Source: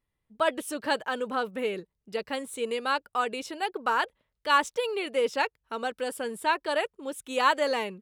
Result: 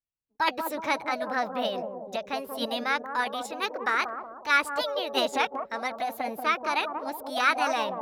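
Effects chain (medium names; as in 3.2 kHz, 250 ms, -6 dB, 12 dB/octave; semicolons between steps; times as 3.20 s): treble shelf 6.7 kHz -6 dB; on a send: bucket-brigade echo 185 ms, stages 1024, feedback 52%, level -5.5 dB; on the sum: formant shift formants +5 st; gate with hold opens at -41 dBFS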